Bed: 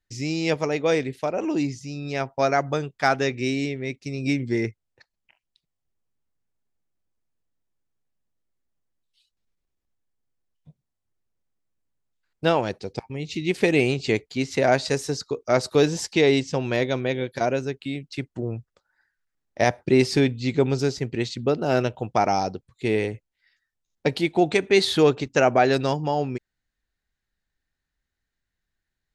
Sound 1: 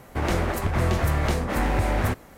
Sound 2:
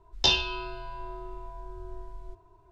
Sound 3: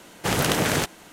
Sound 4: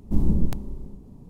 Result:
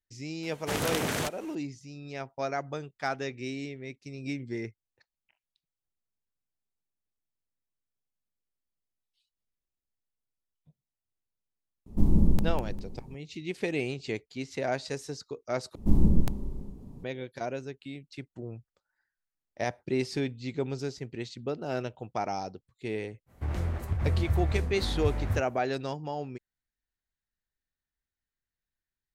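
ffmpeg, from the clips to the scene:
-filter_complex "[4:a]asplit=2[a][b];[0:a]volume=-11dB[c];[a]aecho=1:1:200|400|600:0.447|0.121|0.0326[d];[1:a]equalizer=f=83:t=o:w=2:g=14[e];[c]asplit=2[f][g];[f]atrim=end=15.754[h];[b]atrim=end=1.29,asetpts=PTS-STARTPTS,volume=-0.5dB[i];[g]atrim=start=17.036[j];[3:a]atrim=end=1.12,asetpts=PTS-STARTPTS,volume=-8dB,afade=t=in:d=0.004:c=hsin,afade=t=out:st=1.116:d=0.004:c=hsin,adelay=430[k];[d]atrim=end=1.29,asetpts=PTS-STARTPTS,volume=-1.5dB,afade=t=in:d=0.004:c=hsin,afade=t=out:st=1.286:d=0.004:c=hsin,adelay=523026S[l];[e]atrim=end=2.37,asetpts=PTS-STARTPTS,volume=-16dB,afade=t=in:d=0.05,afade=t=out:st=2.32:d=0.05,adelay=23260[m];[h][i]acrossfade=d=0.004:c1=hsin:c2=hsin[n];[n][j]acrossfade=d=0.004:c1=hsin:c2=hsin[o];[o][k][l][m]amix=inputs=4:normalize=0"

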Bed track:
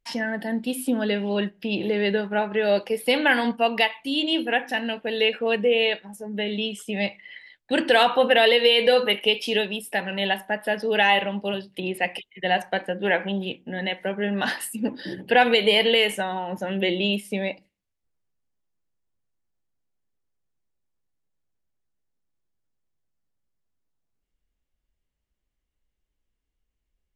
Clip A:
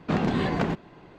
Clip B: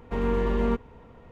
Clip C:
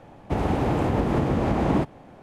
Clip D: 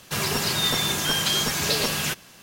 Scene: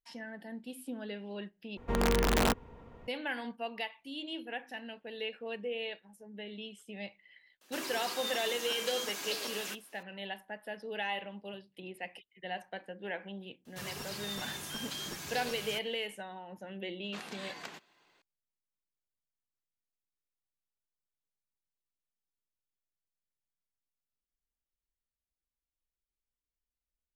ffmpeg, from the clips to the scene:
-filter_complex "[4:a]asplit=2[a][b];[0:a]volume=-17dB[c];[2:a]aeval=exprs='(mod(7.08*val(0)+1,2)-1)/7.08':c=same[d];[a]highpass=f=260:w=0.5412,highpass=f=260:w=1.3066[e];[1:a]aderivative[f];[c]asplit=2[g][h];[g]atrim=end=1.774[i];[d]atrim=end=1.31,asetpts=PTS-STARTPTS,volume=-3dB[j];[h]atrim=start=3.076[k];[e]atrim=end=2.42,asetpts=PTS-STARTPTS,volume=-14.5dB,afade=t=in:d=0.004:c=hsin,afade=t=out:st=2.416:d=0.004:c=hsin,adelay=7610[l];[b]atrim=end=2.42,asetpts=PTS-STARTPTS,volume=-17.5dB,afade=t=in:d=0.004:c=hsin,afade=t=out:st=2.416:d=0.004:c=hsin,adelay=13650[m];[f]atrim=end=1.18,asetpts=PTS-STARTPTS,afade=t=in:d=0.004:c=hsin,afade=t=out:st=1.176:d=0.004:c=hsin,adelay=17040[n];[i][j]acrossfade=d=0.004:c1=hsin:c2=hsin[o];[o][k]acrossfade=d=0.004:c1=hsin:c2=hsin[p];[p][l][m][n]amix=inputs=4:normalize=0"

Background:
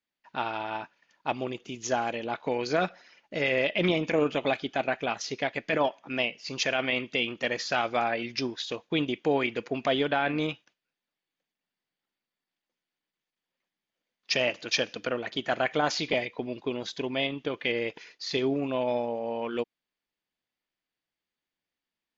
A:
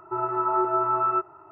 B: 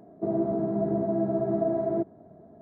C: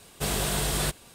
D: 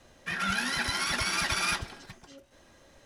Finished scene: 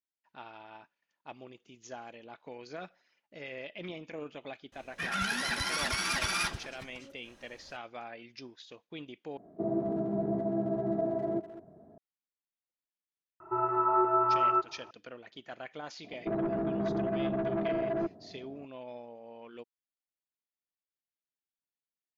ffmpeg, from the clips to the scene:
-filter_complex "[2:a]asplit=2[a][b];[0:a]volume=-16.5dB[c];[a]asplit=2[d][e];[e]adelay=200,highpass=300,lowpass=3.4k,asoftclip=type=hard:threshold=-24dB,volume=-14dB[f];[d][f]amix=inputs=2:normalize=0[g];[b]asoftclip=type=tanh:threshold=-25dB[h];[c]asplit=2[i][j];[i]atrim=end=9.374[k];[g]atrim=end=2.61,asetpts=PTS-STARTPTS,volume=-4.5dB[l];[j]atrim=start=11.976[m];[4:a]atrim=end=3.05,asetpts=PTS-STARTPTS,volume=-2.5dB,afade=t=in:d=0.004:c=hsin,afade=t=out:st=3.046:d=0.004:c=hsin,adelay=4720[n];[1:a]atrim=end=1.51,asetpts=PTS-STARTPTS,volume=-2.5dB,afade=t=in:d=0.004:c=hsin,afade=t=out:st=1.506:d=0.004:c=hsin,adelay=13400[o];[h]atrim=end=2.61,asetpts=PTS-STARTPTS,volume=-1.5dB,afade=t=in:d=0.004:c=hsin,afade=t=out:st=2.606:d=0.004:c=hsin,adelay=707364S[p];[k][l]acrossfade=d=0.004:c1=hsin:c2=hsin[q];[q][m]acrossfade=d=0.004:c1=hsin:c2=hsin[r];[r][n][o][p]amix=inputs=4:normalize=0"

